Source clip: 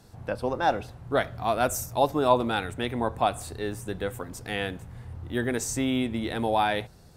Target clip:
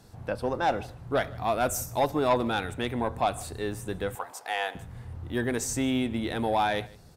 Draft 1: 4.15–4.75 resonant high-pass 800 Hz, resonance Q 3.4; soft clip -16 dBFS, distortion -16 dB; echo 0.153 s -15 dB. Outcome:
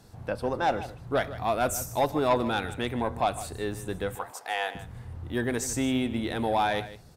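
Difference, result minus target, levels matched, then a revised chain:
echo-to-direct +8 dB
4.15–4.75 resonant high-pass 800 Hz, resonance Q 3.4; soft clip -16 dBFS, distortion -16 dB; echo 0.153 s -23 dB

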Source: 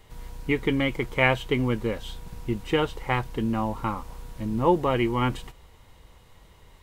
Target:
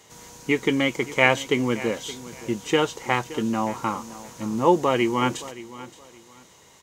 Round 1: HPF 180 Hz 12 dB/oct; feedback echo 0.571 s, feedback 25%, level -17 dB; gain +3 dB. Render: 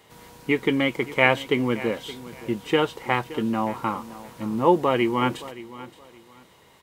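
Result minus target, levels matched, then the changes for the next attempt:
8000 Hz band -10.5 dB
add after HPF: bell 6500 Hz +14.5 dB 0.62 oct

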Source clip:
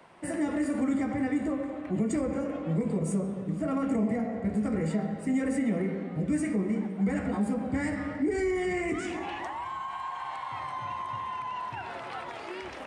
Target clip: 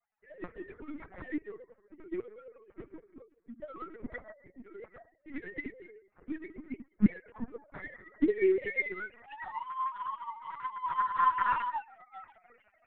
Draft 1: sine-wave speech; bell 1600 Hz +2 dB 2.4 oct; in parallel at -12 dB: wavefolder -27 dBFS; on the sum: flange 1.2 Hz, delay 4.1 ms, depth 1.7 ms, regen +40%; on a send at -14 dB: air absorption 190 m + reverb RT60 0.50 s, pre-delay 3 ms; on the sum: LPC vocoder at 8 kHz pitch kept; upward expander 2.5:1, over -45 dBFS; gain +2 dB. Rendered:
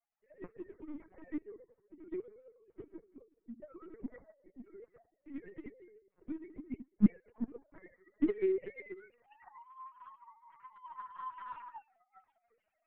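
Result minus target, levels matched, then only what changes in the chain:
2000 Hz band -12.5 dB
change: bell 1600 Hz +13.5 dB 2.4 oct

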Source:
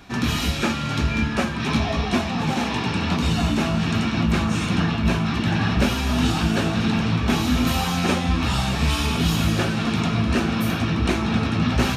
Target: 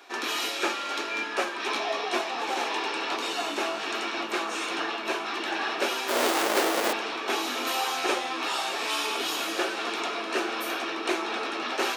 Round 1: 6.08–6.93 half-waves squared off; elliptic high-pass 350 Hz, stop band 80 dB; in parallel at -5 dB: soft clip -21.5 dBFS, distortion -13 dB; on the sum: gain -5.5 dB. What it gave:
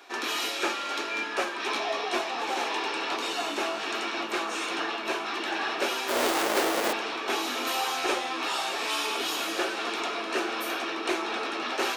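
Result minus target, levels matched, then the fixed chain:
soft clip: distortion +12 dB
6.08–6.93 half-waves squared off; elliptic high-pass 350 Hz, stop band 80 dB; in parallel at -5 dB: soft clip -11 dBFS, distortion -25 dB; on the sum: gain -5.5 dB

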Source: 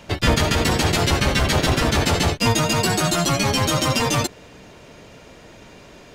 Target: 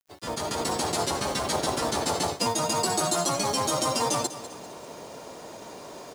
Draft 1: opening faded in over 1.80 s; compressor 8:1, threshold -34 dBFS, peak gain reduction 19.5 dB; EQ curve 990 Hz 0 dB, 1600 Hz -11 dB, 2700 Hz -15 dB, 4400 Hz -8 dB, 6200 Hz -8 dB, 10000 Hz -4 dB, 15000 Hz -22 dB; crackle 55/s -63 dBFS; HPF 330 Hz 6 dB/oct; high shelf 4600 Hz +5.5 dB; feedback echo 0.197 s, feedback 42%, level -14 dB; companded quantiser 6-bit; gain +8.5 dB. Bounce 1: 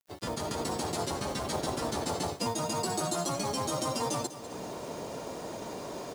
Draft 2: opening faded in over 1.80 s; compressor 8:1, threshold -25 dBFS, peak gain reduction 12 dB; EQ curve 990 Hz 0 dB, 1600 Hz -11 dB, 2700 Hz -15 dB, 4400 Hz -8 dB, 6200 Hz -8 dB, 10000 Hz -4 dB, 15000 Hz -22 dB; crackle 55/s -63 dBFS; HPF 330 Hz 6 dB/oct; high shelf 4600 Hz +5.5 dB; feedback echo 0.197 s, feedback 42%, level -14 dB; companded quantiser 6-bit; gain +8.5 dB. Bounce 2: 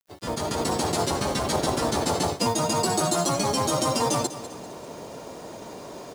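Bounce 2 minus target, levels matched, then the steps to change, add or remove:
250 Hz band +3.0 dB
change: HPF 680 Hz 6 dB/oct

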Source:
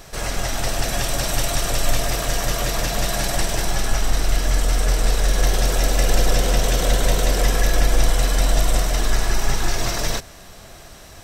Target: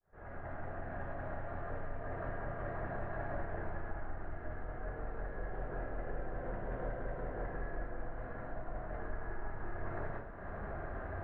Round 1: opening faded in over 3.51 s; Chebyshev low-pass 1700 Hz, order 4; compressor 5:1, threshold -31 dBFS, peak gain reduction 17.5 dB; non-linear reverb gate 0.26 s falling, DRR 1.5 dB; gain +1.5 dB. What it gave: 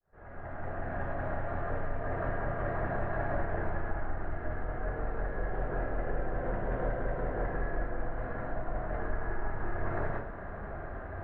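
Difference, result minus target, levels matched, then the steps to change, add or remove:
compressor: peak gain reduction -7 dB
change: compressor 5:1, threshold -40 dBFS, peak gain reduction 25 dB

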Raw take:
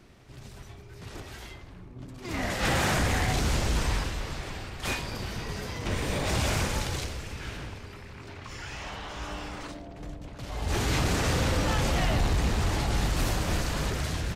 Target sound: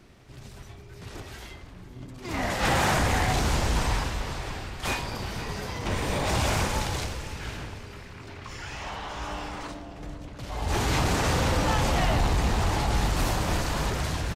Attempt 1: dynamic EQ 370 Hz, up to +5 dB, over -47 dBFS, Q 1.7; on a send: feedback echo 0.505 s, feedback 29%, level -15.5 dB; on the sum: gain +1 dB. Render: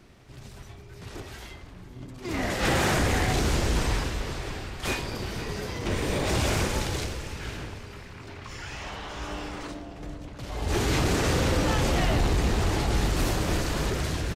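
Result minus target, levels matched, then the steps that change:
1000 Hz band -3.5 dB
change: dynamic EQ 890 Hz, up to +5 dB, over -47 dBFS, Q 1.7

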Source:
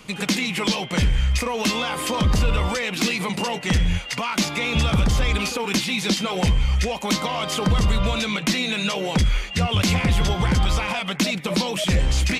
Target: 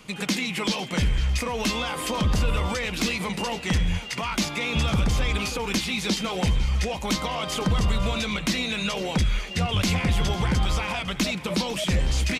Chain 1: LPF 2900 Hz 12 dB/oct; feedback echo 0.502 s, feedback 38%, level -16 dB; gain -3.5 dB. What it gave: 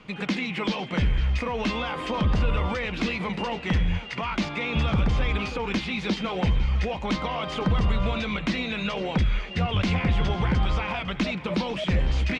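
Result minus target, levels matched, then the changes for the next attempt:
4000 Hz band -4.0 dB
remove: LPF 2900 Hz 12 dB/oct

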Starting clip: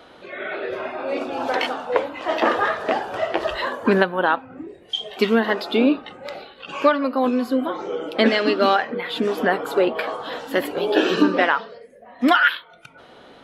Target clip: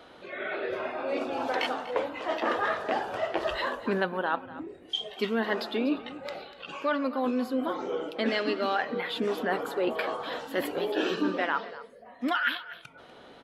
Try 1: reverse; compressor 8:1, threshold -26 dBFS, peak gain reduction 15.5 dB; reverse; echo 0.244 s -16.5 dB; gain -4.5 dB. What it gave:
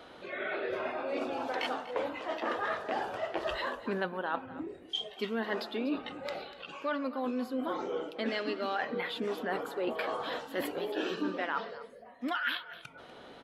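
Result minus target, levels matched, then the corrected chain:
compressor: peak gain reduction +5.5 dB
reverse; compressor 8:1, threshold -19.5 dBFS, peak gain reduction 9.5 dB; reverse; echo 0.244 s -16.5 dB; gain -4.5 dB

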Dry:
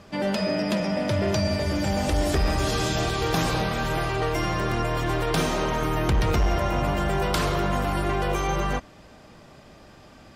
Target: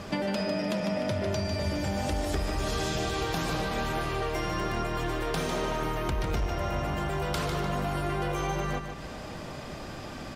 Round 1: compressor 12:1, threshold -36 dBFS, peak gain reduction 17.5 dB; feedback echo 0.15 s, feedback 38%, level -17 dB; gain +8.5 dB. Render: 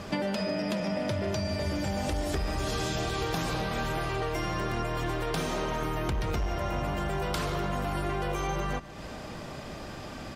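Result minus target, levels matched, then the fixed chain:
echo-to-direct -10 dB
compressor 12:1, threshold -36 dBFS, peak gain reduction 17.5 dB; feedback echo 0.15 s, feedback 38%, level -7 dB; gain +8.5 dB

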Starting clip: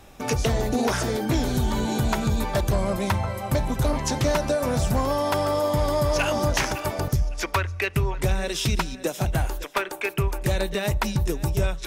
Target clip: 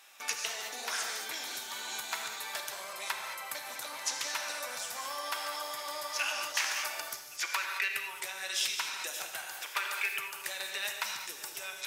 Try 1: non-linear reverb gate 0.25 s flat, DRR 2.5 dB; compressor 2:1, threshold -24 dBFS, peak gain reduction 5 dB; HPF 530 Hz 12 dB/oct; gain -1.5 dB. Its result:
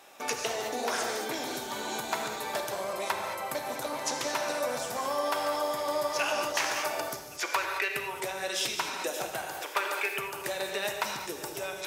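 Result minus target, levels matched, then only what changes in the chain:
500 Hz band +11.5 dB
change: HPF 1500 Hz 12 dB/oct

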